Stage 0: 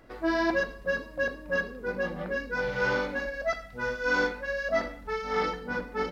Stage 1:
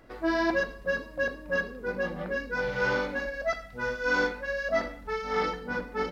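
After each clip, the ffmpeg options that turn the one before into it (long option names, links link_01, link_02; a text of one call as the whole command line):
ffmpeg -i in.wav -af anull out.wav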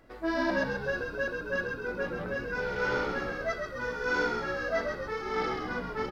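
ffmpeg -i in.wav -filter_complex "[0:a]asplit=9[link_01][link_02][link_03][link_04][link_05][link_06][link_07][link_08][link_09];[link_02]adelay=132,afreqshift=-64,volume=-5dB[link_10];[link_03]adelay=264,afreqshift=-128,volume=-9.4dB[link_11];[link_04]adelay=396,afreqshift=-192,volume=-13.9dB[link_12];[link_05]adelay=528,afreqshift=-256,volume=-18.3dB[link_13];[link_06]adelay=660,afreqshift=-320,volume=-22.7dB[link_14];[link_07]adelay=792,afreqshift=-384,volume=-27.2dB[link_15];[link_08]adelay=924,afreqshift=-448,volume=-31.6dB[link_16];[link_09]adelay=1056,afreqshift=-512,volume=-36.1dB[link_17];[link_01][link_10][link_11][link_12][link_13][link_14][link_15][link_16][link_17]amix=inputs=9:normalize=0,volume=-3.5dB" out.wav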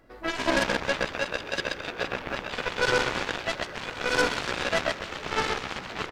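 ffmpeg -i in.wav -af "aecho=1:1:130|299|518.7|804.3|1176:0.631|0.398|0.251|0.158|0.1,aeval=exprs='0.158*(cos(1*acos(clip(val(0)/0.158,-1,1)))-cos(1*PI/2))+0.0282*(cos(4*acos(clip(val(0)/0.158,-1,1)))-cos(4*PI/2))+0.0141*(cos(6*acos(clip(val(0)/0.158,-1,1)))-cos(6*PI/2))+0.0398*(cos(7*acos(clip(val(0)/0.158,-1,1)))-cos(7*PI/2))':channel_layout=same,volume=2.5dB" out.wav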